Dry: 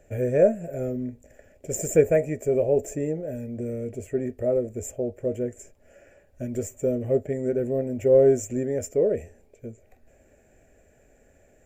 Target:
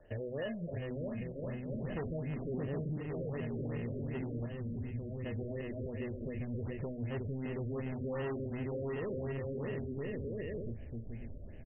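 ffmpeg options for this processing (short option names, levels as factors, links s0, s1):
-filter_complex "[0:a]aecho=1:1:620|1023|1285|1455|1566:0.631|0.398|0.251|0.158|0.1,acrossover=split=260|940|3700[s0][s1][s2][s3];[s0]dynaudnorm=f=140:g=13:m=6.31[s4];[s4][s1][s2][s3]amix=inputs=4:normalize=0,acrusher=samples=19:mix=1:aa=0.000001,asoftclip=type=tanh:threshold=0.158,asplit=3[s5][s6][s7];[s5]afade=t=out:st=1.07:d=0.02[s8];[s6]asplit=2[s9][s10];[s10]adelay=48,volume=0.562[s11];[s9][s11]amix=inputs=2:normalize=0,afade=t=in:st=1.07:d=0.02,afade=t=out:st=1.71:d=0.02[s12];[s7]afade=t=in:st=1.71:d=0.02[s13];[s8][s12][s13]amix=inputs=3:normalize=0,asettb=1/sr,asplit=3[s14][s15][s16];[s14]atrim=end=4.464[s17];[s15]atrim=start=4.46:end=5.25,asetpts=PTS-STARTPTS,afade=t=in:d=0.004:c=qsin,afade=t=out:st=0.786:d=0.004:c=qsin,bass=f=250:g=9,treble=f=4000:g=14[s18];[s16]atrim=start=5.246[s19];[s17][s18]acrossfade=d=0.004:c1=hsin:c2=qsin[s20];[s20][s19]acrossfade=d=0.004:c1=qsin:c2=hsin,alimiter=limit=0.0668:level=0:latency=1,asettb=1/sr,asplit=3[s21][s22][s23];[s21]atrim=end=2.544[s24];[s22]atrim=start=2.54:end=2.98,asetpts=PTS-STARTPTS,afade=t=in:d=0.004:c=qsin,afade=t=out:st=0.436:d=0.004:c=qsin,equalizer=f=210:w=0.71:g=10.5[s25];[s23]atrim=start=2.976[s26];[s24][s25]acrossfade=d=0.004:c1=hsin:c2=qsin[s27];[s27][s26]acrossfade=d=0.004:c1=qsin:c2=hsin,acompressor=threshold=0.02:ratio=4,bandreject=f=62.09:t=h:w=4,bandreject=f=124.18:t=h:w=4,bandreject=f=186.27:t=h:w=4,bandreject=f=248.36:t=h:w=4,bandreject=f=310.45:t=h:w=4,afftfilt=real='re*lt(b*sr/1024,610*pow(3300/610,0.5+0.5*sin(2*PI*2.7*pts/sr)))':imag='im*lt(b*sr/1024,610*pow(3300/610,0.5+0.5*sin(2*PI*2.7*pts/sr)))':win_size=1024:overlap=0.75,volume=0.708"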